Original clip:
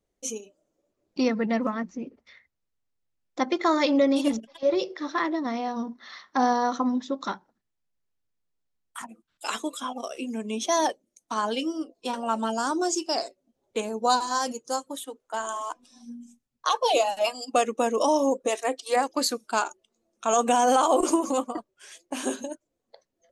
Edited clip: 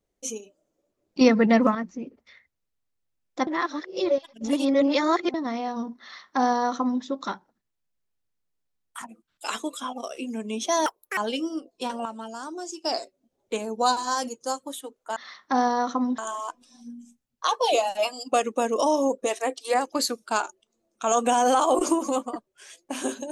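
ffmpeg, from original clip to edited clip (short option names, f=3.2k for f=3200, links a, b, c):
-filter_complex "[0:a]asplit=11[a][b][c][d][e][f][g][h][i][j][k];[a]atrim=end=1.212[l];[b]atrim=start=1.208:end=1.752,asetpts=PTS-STARTPTS,volume=7dB[m];[c]atrim=start=1.748:end=3.472[n];[d]atrim=start=3.468:end=5.342,asetpts=PTS-STARTPTS,areverse[o];[e]atrim=start=5.338:end=10.864[p];[f]atrim=start=10.86:end=11.41,asetpts=PTS-STARTPTS,asetrate=77616,aresample=44100,atrim=end_sample=13781,asetpts=PTS-STARTPTS[q];[g]atrim=start=11.406:end=12.292[r];[h]atrim=start=12.288:end=13.082,asetpts=PTS-STARTPTS,volume=-9.5dB[s];[i]atrim=start=13.078:end=15.402[t];[j]atrim=start=6.008:end=7.032[u];[k]atrim=start=15.398[v];[l][m]acrossfade=d=0.004:c1=hsin:c2=hsin[w];[w][n]acrossfade=d=0.004:c1=hsin:c2=hsin[x];[x][o]acrossfade=d=0.004:c1=hsin:c2=hsin[y];[y][p]acrossfade=d=0.004:c1=hsin:c2=hsin[z];[z][q]acrossfade=d=0.004:c1=hsin:c2=hsin[aa];[aa][r]acrossfade=d=0.004:c1=hsin:c2=hsin[ab];[ab][s]acrossfade=d=0.004:c1=hsin:c2=hsin[ac];[ac][t]acrossfade=d=0.004:c1=hsin:c2=hsin[ad];[ad][u]acrossfade=d=0.004:c1=hsin:c2=hsin[ae];[ae][v]acrossfade=d=0.004:c1=hsin:c2=hsin"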